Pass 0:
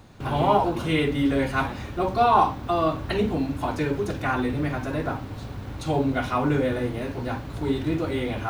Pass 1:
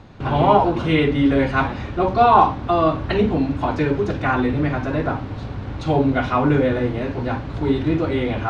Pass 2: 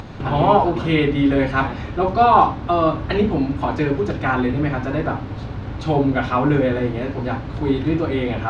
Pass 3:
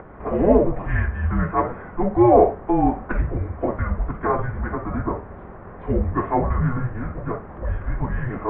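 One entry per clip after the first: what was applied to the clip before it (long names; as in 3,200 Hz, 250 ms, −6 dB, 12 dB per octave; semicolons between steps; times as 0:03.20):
high-frequency loss of the air 140 metres; level +6 dB
upward compression, threshold −25 dBFS
single-sideband voice off tune −360 Hz 320–2,100 Hz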